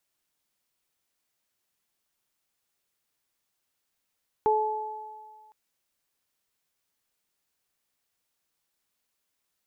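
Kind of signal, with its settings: additive tone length 1.06 s, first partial 431 Hz, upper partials 1 dB, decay 1.32 s, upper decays 1.93 s, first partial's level -21.5 dB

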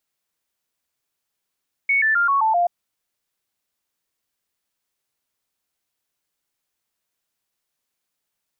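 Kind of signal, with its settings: stepped sine 2220 Hz down, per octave 3, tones 6, 0.13 s, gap 0.00 s -15 dBFS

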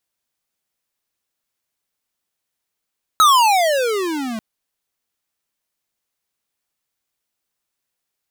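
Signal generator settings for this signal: gliding synth tone square, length 1.19 s, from 1310 Hz, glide -31.5 st, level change -16 dB, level -10 dB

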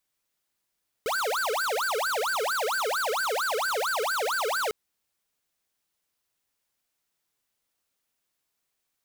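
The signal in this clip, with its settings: siren wail 421–1570 Hz 4.4/s square -27.5 dBFS 3.65 s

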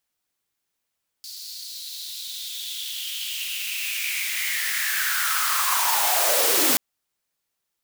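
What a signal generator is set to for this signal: swept filtered noise white, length 5.53 s highpass, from 4600 Hz, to 220 Hz, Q 5.8, linear, gain ramp +23 dB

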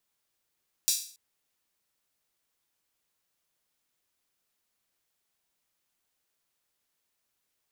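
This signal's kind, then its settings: open hi-hat length 0.28 s, high-pass 4900 Hz, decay 0.46 s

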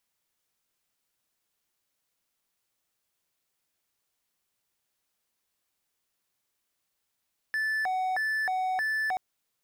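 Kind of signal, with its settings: siren hi-lo 747–1750 Hz 1.6/s triangle -24 dBFS 1.63 s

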